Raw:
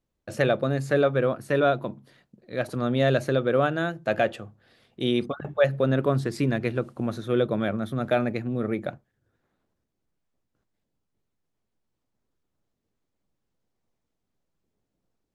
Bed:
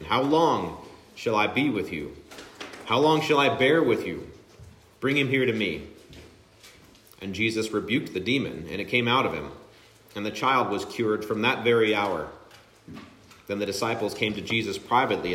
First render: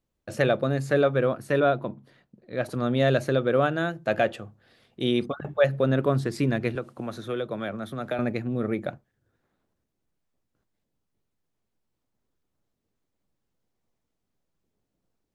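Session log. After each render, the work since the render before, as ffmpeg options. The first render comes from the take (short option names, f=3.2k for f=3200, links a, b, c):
-filter_complex "[0:a]asettb=1/sr,asplit=3[a][b][c];[a]atrim=end=1.604[d];[b]atrim=start=1.6:end=2.63,asetpts=PTS-STARTPTS,afade=t=in:d=0.004:c=qsin,afade=t=out:st=1.026:d=0.004:c=qsin,highshelf=f=4.3k:g=-8.5[e];[c]atrim=start=2.626[f];[d][e]acrossfade=d=0.004:c1=hsin:c2=qsin[g];[g][f]acrossfade=d=0.004:c1=qsin:c2=hsin,asettb=1/sr,asplit=3[h][i][j];[h]atrim=end=6.754[k];[i]atrim=start=6.75:end=8.19,asetpts=PTS-STARTPTS,afade=t=in:d=0.004:c=qsin,afade=t=out:st=1.436:d=0.004:c=qsin,acrossover=split=99|480[l][m][n];[l]acompressor=threshold=-54dB:ratio=4[o];[m]acompressor=threshold=-35dB:ratio=4[p];[n]acompressor=threshold=-30dB:ratio=4[q];[o][p][q]amix=inputs=3:normalize=0[r];[j]atrim=start=8.186[s];[k][r]acrossfade=d=0.004:c1=hsin:c2=qsin[t];[t][s]acrossfade=d=0.004:c1=qsin:c2=hsin"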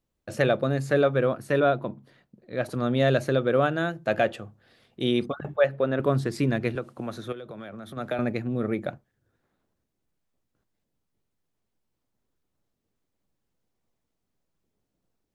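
-filter_complex "[0:a]asettb=1/sr,asplit=3[a][b][c];[a]atrim=end=5.564[d];[b]atrim=start=5.56:end=6,asetpts=PTS-STARTPTS,afade=t=in:d=0.004:c=qsin,afade=t=out:st=0.436:d=0.004:c=qsin,bass=f=250:g=-9,treble=f=4k:g=-11[e];[c]atrim=start=5.996[f];[d][e]acrossfade=d=0.004:c1=hsin:c2=qsin[g];[g][f]acrossfade=d=0.004:c1=qsin:c2=hsin,asettb=1/sr,asplit=3[h][i][j];[h]atrim=end=7.324[k];[i]atrim=start=7.32:end=7.97,asetpts=PTS-STARTPTS,afade=t=in:d=0.004:c=qsin,afade=t=out:st=0.646:d=0.004:c=qsin,acompressor=threshold=-36dB:ratio=6:attack=3.2:release=140:knee=1:detection=peak[l];[j]atrim=start=7.966[m];[k][l]acrossfade=d=0.004:c1=hsin:c2=qsin[n];[n][m]acrossfade=d=0.004:c1=qsin:c2=hsin"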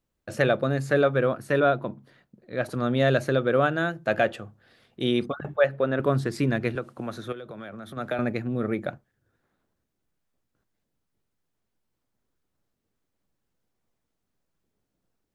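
-af "equalizer=f=1.5k:w=2:g=3"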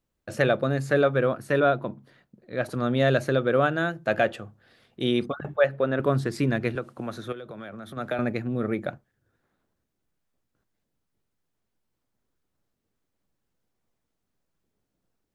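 -af anull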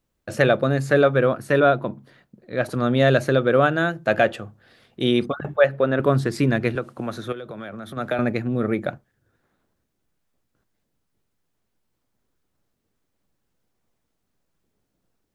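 -af "volume=4.5dB"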